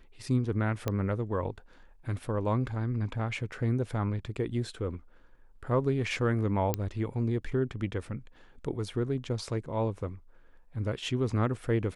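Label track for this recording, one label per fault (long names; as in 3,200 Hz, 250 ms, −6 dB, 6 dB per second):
0.880000	0.880000	click −16 dBFS
6.740000	6.740000	click −13 dBFS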